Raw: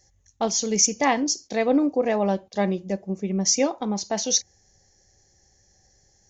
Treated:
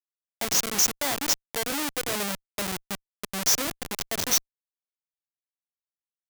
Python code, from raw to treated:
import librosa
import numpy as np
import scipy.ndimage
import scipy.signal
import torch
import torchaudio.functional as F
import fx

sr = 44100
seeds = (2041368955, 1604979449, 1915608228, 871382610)

y = fx.add_hum(x, sr, base_hz=60, snr_db=30)
y = fx.schmitt(y, sr, flips_db=-22.5)
y = fx.tilt_eq(y, sr, slope=3.0)
y = y * librosa.db_to_amplitude(-1.5)